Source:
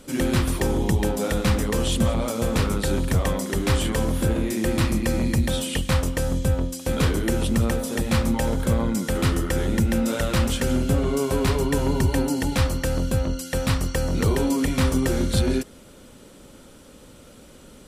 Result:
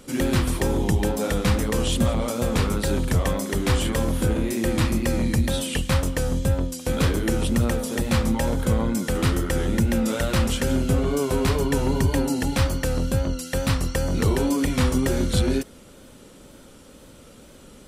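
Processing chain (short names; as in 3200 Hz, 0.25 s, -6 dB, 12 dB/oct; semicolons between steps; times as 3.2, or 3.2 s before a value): wow and flutter 58 cents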